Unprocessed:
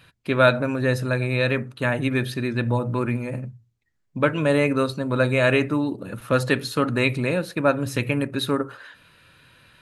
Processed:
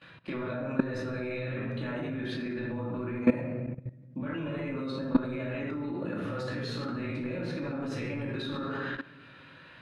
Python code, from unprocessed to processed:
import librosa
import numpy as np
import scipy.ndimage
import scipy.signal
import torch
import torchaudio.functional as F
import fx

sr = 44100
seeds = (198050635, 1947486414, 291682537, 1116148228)

y = fx.highpass(x, sr, hz=250.0, slope=6)
y = fx.over_compress(y, sr, threshold_db=-29.0, ratio=-1.0)
y = fx.air_absorb(y, sr, metres=90.0)
y = fx.room_shoebox(y, sr, seeds[0], volume_m3=550.0, walls='mixed', distance_m=2.4)
y = fx.level_steps(y, sr, step_db=17)
y = fx.high_shelf(y, sr, hz=4900.0, db=-9.5)